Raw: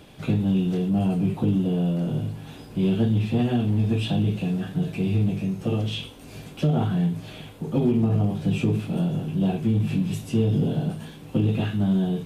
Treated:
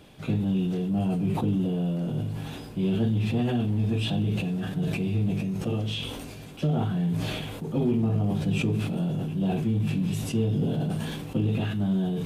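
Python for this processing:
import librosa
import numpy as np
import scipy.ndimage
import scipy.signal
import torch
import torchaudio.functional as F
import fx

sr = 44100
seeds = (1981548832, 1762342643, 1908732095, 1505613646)

y = fx.sustainer(x, sr, db_per_s=27.0)
y = y * 10.0 ** (-4.0 / 20.0)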